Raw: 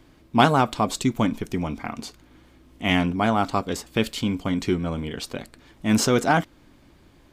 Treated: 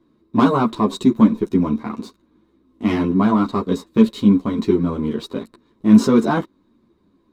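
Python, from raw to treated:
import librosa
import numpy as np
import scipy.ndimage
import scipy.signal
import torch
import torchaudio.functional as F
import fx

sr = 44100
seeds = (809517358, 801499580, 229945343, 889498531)

y = fx.leveller(x, sr, passes=2)
y = fx.small_body(y, sr, hz=(230.0, 360.0, 1000.0, 3800.0), ring_ms=20, db=17)
y = fx.ensemble(y, sr)
y = y * 10.0 ** (-12.5 / 20.0)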